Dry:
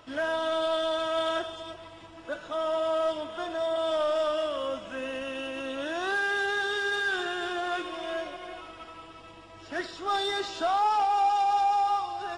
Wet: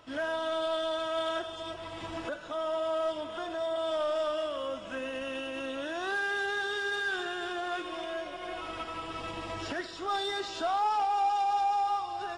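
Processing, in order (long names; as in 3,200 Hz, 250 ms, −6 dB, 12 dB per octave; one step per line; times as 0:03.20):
camcorder AGC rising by 21 dB per second
level −3.5 dB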